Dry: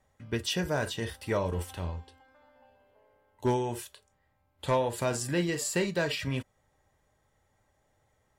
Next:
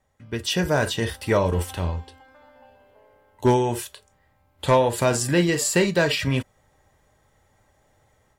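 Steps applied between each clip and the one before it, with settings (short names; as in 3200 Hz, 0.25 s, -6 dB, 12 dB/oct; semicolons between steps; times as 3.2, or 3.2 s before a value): AGC gain up to 9 dB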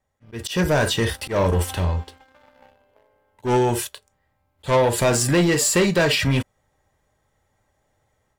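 sample leveller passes 2; auto swell 0.126 s; gain -2 dB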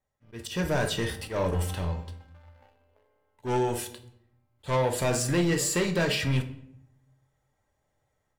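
shoebox room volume 160 m³, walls mixed, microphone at 0.37 m; gain -8.5 dB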